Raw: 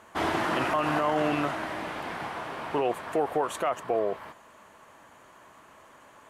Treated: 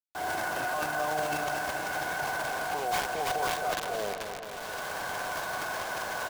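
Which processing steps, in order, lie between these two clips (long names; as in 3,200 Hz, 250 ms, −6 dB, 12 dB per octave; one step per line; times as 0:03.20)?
variable-slope delta modulation 32 kbit/s
camcorder AGC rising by 33 dB per second
high-pass filter 52 Hz
comb filter 1.9 ms, depth 37%
in parallel at −2 dB: downward compressor 16 to 1, threshold −34 dBFS, peak gain reduction 14.5 dB
on the sum: tuned comb filter 730 Hz, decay 0.35 s, mix 70%
hollow resonant body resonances 760/1,500 Hz, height 14 dB, ringing for 30 ms
bit reduction 6 bits
transient designer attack −4 dB, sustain +12 dB
on a send: feedback echo with a low-pass in the loop 219 ms, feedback 73%, low-pass 3,700 Hz, level −7.5 dB
on the sum: level −4 dB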